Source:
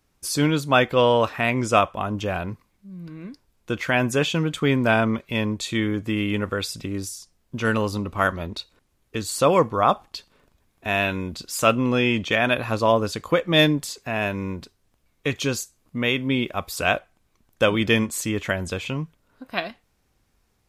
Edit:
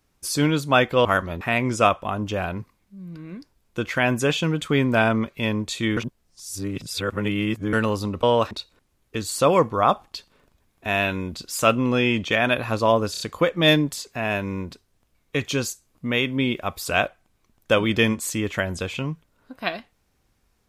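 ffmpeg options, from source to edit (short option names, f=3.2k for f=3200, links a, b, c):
-filter_complex "[0:a]asplit=10[a][b][c][d][e][f][g][h][i][j];[a]atrim=end=1.052[k];[b]atrim=start=8.148:end=8.512[l];[c]atrim=start=1.328:end=5.892[m];[d]atrim=start=5.888:end=7.652,asetpts=PTS-STARTPTS,areverse[n];[e]atrim=start=7.648:end=8.152[o];[f]atrim=start=1.048:end=1.332[p];[g]atrim=start=8.508:end=13.142[q];[h]atrim=start=13.108:end=13.142[r];[i]atrim=start=13.108:end=13.142[s];[j]atrim=start=13.108[t];[k][l]acrossfade=d=0.004:c1=hsin:c2=hsin[u];[u][m]acrossfade=d=0.004:c1=hsin:c2=hsin[v];[v][n]acrossfade=d=0.004:c1=hsin:c2=hsin[w];[w][o]acrossfade=d=0.004:c1=hsin:c2=hsin[x];[x][p]acrossfade=d=0.004:c1=hsin:c2=hsin[y];[y][q]acrossfade=d=0.004:c1=hsin:c2=hsin[z];[z][r]acrossfade=d=0.004:c1=hsin:c2=hsin[aa];[aa][s]acrossfade=d=0.004:c1=hsin:c2=hsin[ab];[ab][t]acrossfade=d=0.004:c1=hsin:c2=hsin"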